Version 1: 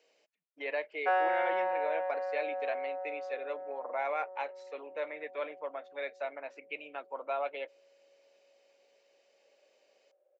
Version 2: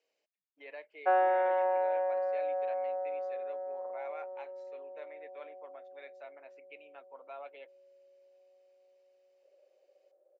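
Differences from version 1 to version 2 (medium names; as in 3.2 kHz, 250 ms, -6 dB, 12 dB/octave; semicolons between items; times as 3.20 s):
speech -12.0 dB; background: add tilt EQ -4.5 dB/octave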